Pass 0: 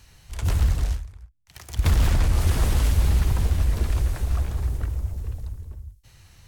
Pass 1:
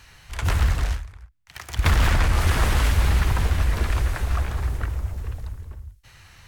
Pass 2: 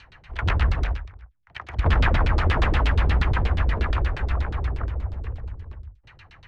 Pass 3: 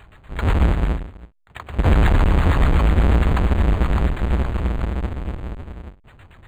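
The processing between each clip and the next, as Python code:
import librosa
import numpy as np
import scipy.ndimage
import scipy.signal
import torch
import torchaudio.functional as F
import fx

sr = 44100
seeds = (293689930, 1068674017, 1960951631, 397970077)

y1 = fx.peak_eq(x, sr, hz=1600.0, db=10.0, octaves=2.4)
y2 = fx.filter_lfo_lowpass(y1, sr, shape='saw_down', hz=8.4, low_hz=290.0, high_hz=4300.0, q=2.2)
y2 = F.gain(torch.from_numpy(y2), -1.0).numpy()
y3 = fx.halfwave_hold(y2, sr)
y3 = np.interp(np.arange(len(y3)), np.arange(len(y3))[::8], y3[::8])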